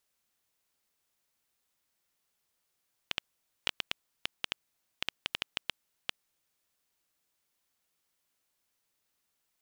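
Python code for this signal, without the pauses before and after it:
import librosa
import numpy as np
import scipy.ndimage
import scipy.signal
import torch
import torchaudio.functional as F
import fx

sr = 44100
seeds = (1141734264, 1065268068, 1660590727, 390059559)

y = fx.geiger_clicks(sr, seeds[0], length_s=3.28, per_s=5.4, level_db=-11.5)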